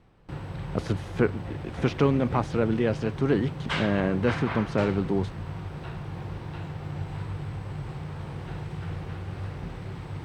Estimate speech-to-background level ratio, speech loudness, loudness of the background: 8.5 dB, -27.0 LUFS, -35.5 LUFS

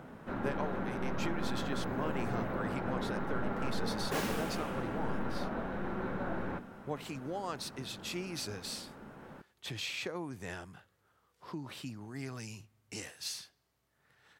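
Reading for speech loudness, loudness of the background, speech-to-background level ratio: -41.5 LUFS, -37.5 LUFS, -4.0 dB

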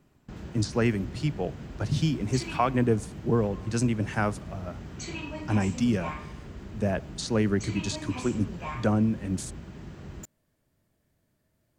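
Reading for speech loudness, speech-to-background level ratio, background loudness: -28.5 LUFS, 11.5 dB, -40.0 LUFS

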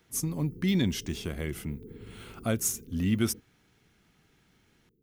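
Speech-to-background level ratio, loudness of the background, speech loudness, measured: 18.5 dB, -49.0 LUFS, -30.5 LUFS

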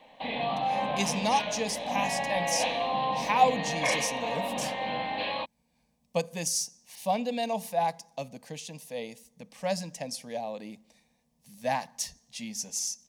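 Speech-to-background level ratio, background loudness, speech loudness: -1.0 dB, -31.0 LUFS, -32.0 LUFS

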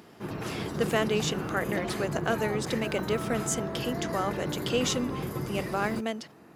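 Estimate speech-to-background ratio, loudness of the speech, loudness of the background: 2.5 dB, -31.5 LUFS, -34.0 LUFS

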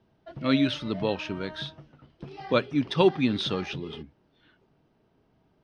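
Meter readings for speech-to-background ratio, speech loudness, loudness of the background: 15.5 dB, -27.0 LUFS, -42.5 LUFS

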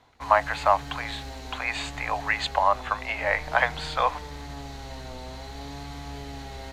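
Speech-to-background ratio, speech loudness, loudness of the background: 13.0 dB, -26.0 LUFS, -39.0 LUFS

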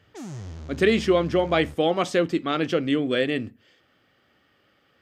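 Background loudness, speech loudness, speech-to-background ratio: -40.5 LUFS, -23.0 LUFS, 17.5 dB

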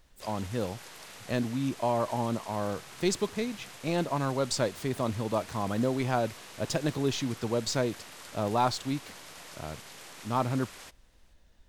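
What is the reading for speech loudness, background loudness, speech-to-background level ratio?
-31.5 LUFS, -46.0 LUFS, 14.5 dB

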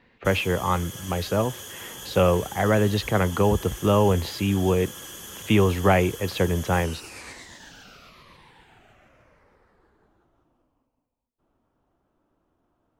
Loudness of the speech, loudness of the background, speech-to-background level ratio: -23.5 LUFS, -38.0 LUFS, 14.5 dB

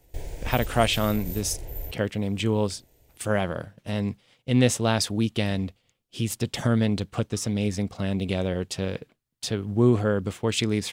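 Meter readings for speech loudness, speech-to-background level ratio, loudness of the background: -26.5 LUFS, 10.5 dB, -37.0 LUFS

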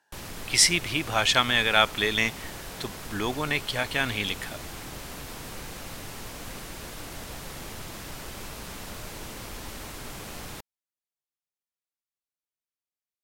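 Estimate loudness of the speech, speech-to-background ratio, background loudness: -24.0 LUFS, 15.0 dB, -39.0 LUFS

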